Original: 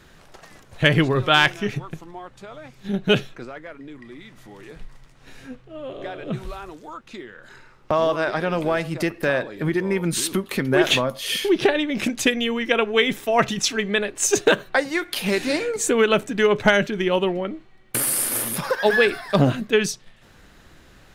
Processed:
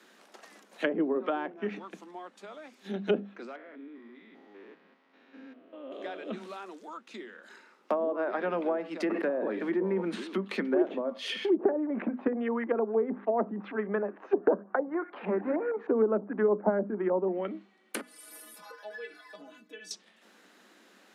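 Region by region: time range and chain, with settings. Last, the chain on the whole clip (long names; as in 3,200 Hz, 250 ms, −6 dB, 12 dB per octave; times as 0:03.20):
0:03.56–0:05.92: spectrum averaged block by block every 200 ms + high-frequency loss of the air 290 metres + comb filter 7.4 ms, depth 36%
0:09.02–0:10.24: one scale factor per block 5 bits + parametric band 6,100 Hz −6 dB 1.3 octaves + level that may fall only so fast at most 34 dB per second
0:11.56–0:17.28: high-frequency loss of the air 350 metres + auto-filter low-pass saw up 6.5 Hz 830–1,700 Hz
0:18.01–0:19.91: downward compressor 2.5 to 1, threshold −28 dBFS + stiff-string resonator 150 Hz, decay 0.27 s, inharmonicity 0.008
whole clip: Butterworth high-pass 190 Hz 96 dB per octave; mains-hum notches 50/100/150/200/250 Hz; treble cut that deepens with the level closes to 580 Hz, closed at −16.5 dBFS; level −6 dB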